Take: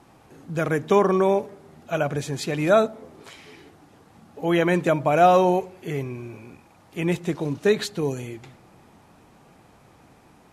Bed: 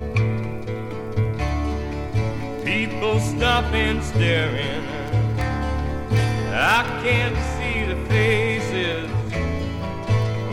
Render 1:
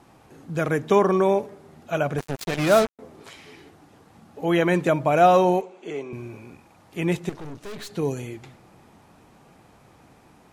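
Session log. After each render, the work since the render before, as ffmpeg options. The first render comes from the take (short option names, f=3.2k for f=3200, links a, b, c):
-filter_complex "[0:a]asettb=1/sr,asplit=3[a][b][c];[a]atrim=end=2.184[d];[b]atrim=start=2.18:end=2.99,asetpts=PTS-STARTPTS,afade=t=in:d=0.004:c=qsin,afade=t=out:st=0.806:d=0.004:c=qsin,acrusher=bits=3:mix=0:aa=0.5[e];[c]atrim=start=2.986[f];[d][e]acrossfade=d=0.004:c1=hsin:c2=qsin[g];[g][f]acrossfade=d=0.004:c1=qsin:c2=hsin,asettb=1/sr,asplit=3[h][i][j];[h]atrim=end=5.614[k];[i]atrim=start=5.61:end=6.13,asetpts=PTS-STARTPTS,afade=t=in:d=0.004:c=qsin,afade=t=out:st=0.516:d=0.004:c=qsin,highpass=f=230:w=0.5412,highpass=f=230:w=1.3066,equalizer=f=270:t=q:w=4:g=-4,equalizer=f=1.8k:t=q:w=4:g=-8,equalizer=f=4.9k:t=q:w=4:g=-10,lowpass=f=7.4k:w=0.5412,lowpass=f=7.4k:w=1.3066[l];[j]atrim=start=6.126[m];[k][l]acrossfade=d=0.004:c1=hsin:c2=qsin[n];[n][m]acrossfade=d=0.004:c1=qsin:c2=hsin,asettb=1/sr,asplit=3[o][p][q];[o]atrim=end=7.294[r];[p]atrim=start=7.29:end=7.9,asetpts=PTS-STARTPTS,afade=t=in:d=0.004:c=qsin,afade=t=out:st=0.606:d=0.004:c=qsin,aeval=exprs='(tanh(56.2*val(0)+0.75)-tanh(0.75))/56.2':c=same[s];[q]atrim=start=7.896[t];[r][s]acrossfade=d=0.004:c1=hsin:c2=qsin[u];[u][t]acrossfade=d=0.004:c1=qsin:c2=hsin"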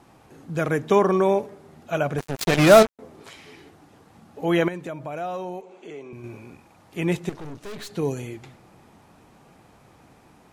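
-filter_complex "[0:a]asettb=1/sr,asplit=3[a][b][c];[a]atrim=end=2.364[d];[b]atrim=start=2.36:end=2.83,asetpts=PTS-STARTPTS,afade=t=in:d=0.004:c=qsin,afade=t=out:st=0.466:d=0.004:c=qsin,acontrast=82[e];[c]atrim=start=2.826[f];[d][e]acrossfade=d=0.004:c1=hsin:c2=qsin[g];[g][f]acrossfade=d=0.004:c1=qsin:c2=hsin,asettb=1/sr,asplit=3[h][i][j];[h]atrim=end=4.684[k];[i]atrim=start=4.68:end=6.24,asetpts=PTS-STARTPTS,afade=t=in:d=0.004:c=qsin,afade=t=out:st=1.556:d=0.004:c=qsin,acompressor=threshold=-40dB:ratio=2:attack=3.2:release=140:knee=1:detection=peak[l];[j]atrim=start=6.236[m];[k][l]acrossfade=d=0.004:c1=hsin:c2=qsin[n];[n][m]acrossfade=d=0.004:c1=qsin:c2=hsin"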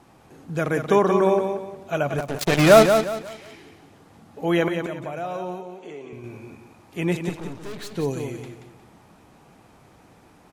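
-af "aecho=1:1:180|360|540|720:0.447|0.138|0.0429|0.0133"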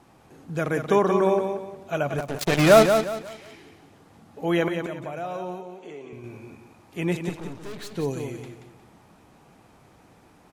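-af "volume=-2dB"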